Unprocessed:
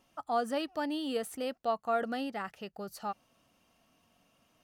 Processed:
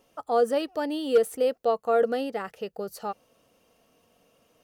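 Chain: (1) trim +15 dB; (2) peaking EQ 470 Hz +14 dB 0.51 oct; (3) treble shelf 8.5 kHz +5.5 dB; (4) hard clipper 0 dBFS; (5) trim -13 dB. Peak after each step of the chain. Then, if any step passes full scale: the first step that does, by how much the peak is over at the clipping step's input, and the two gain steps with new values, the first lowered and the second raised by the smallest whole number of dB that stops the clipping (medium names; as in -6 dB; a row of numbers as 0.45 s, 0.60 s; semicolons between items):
-4.5 dBFS, +4.5 dBFS, +4.5 dBFS, 0.0 dBFS, -13.0 dBFS; step 2, 4.5 dB; step 1 +10 dB, step 5 -8 dB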